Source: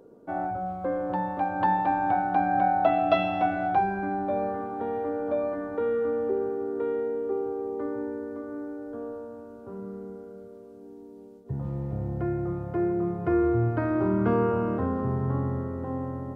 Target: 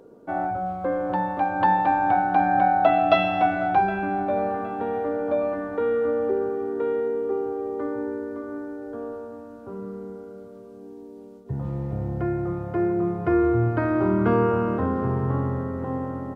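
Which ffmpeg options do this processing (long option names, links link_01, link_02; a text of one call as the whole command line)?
ffmpeg -i in.wav -filter_complex "[0:a]equalizer=frequency=2900:width=0.33:gain=3.5,asplit=2[link_01][link_02];[link_02]adelay=765,lowpass=frequency=3300:poles=1,volume=-18.5dB,asplit=2[link_03][link_04];[link_04]adelay=765,lowpass=frequency=3300:poles=1,volume=0.42,asplit=2[link_05][link_06];[link_06]adelay=765,lowpass=frequency=3300:poles=1,volume=0.42[link_07];[link_03][link_05][link_07]amix=inputs=3:normalize=0[link_08];[link_01][link_08]amix=inputs=2:normalize=0,volume=2.5dB" out.wav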